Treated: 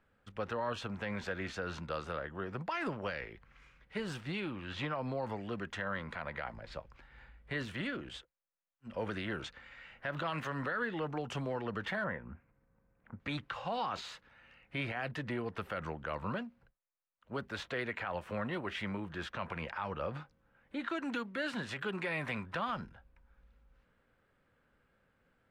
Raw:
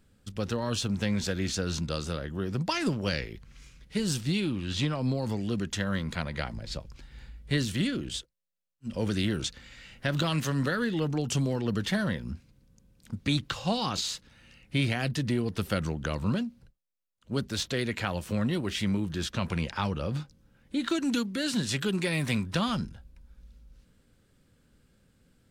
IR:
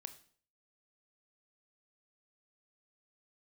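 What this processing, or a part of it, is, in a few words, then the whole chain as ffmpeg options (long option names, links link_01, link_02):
DJ mixer with the lows and highs turned down: -filter_complex "[0:a]acrossover=split=550 2300:gain=0.178 1 0.0631[link_01][link_02][link_03];[link_01][link_02][link_03]amix=inputs=3:normalize=0,alimiter=level_in=5dB:limit=-24dB:level=0:latency=1:release=56,volume=-5dB,asettb=1/sr,asplit=3[link_04][link_05][link_06];[link_04]atrim=end=12.044[link_07];[link_05]atrim=start=12.04:end=13.2,asetpts=PTS-STARTPTS,afade=type=in:duration=0.004:curve=qsin,afade=type=out:start_time=1.156:duration=0.004:curve=qsin,lowpass=frequency=2200:width=0.5412,lowpass=frequency=2200:width=1.3066[link_08];[link_06]atrim=start=13.196[link_09];[link_07][link_08]acrossfade=duration=0.004:curve1=hsin:curve2=qsin[link_10];[link_10][link_09]acrossfade=duration=0.004:curve1=qsin:curve2=hsin,volume=2.5dB"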